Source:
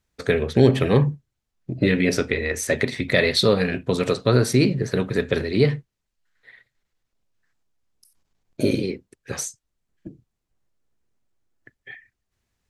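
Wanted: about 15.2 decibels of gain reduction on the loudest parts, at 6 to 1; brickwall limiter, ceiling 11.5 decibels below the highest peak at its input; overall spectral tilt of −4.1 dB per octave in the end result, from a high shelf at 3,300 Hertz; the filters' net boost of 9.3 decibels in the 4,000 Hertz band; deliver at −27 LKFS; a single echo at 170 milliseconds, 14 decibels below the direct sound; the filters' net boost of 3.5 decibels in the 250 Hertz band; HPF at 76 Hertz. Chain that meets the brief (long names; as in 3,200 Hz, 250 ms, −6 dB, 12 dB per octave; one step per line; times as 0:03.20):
high-pass filter 76 Hz
parametric band 250 Hz +4.5 dB
high-shelf EQ 3,300 Hz +4 dB
parametric band 4,000 Hz +7.5 dB
downward compressor 6 to 1, threshold −24 dBFS
brickwall limiter −22 dBFS
single-tap delay 170 ms −14 dB
level +6 dB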